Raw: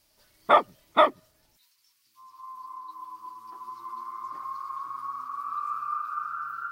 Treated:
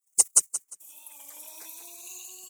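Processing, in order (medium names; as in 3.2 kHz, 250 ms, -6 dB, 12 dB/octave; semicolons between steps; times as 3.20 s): spectral gate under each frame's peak -25 dB weak; resonant high shelf 2.1 kHz +10.5 dB, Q 3; wide varispeed 2.69×; feedback delay 176 ms, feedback 23%, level -12 dB; warped record 33 1/3 rpm, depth 100 cents; trim +9 dB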